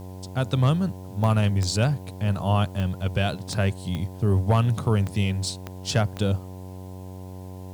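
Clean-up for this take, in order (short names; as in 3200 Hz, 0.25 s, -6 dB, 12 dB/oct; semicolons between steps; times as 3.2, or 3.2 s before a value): clip repair -10 dBFS; de-click; de-hum 93 Hz, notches 11; expander -30 dBFS, range -21 dB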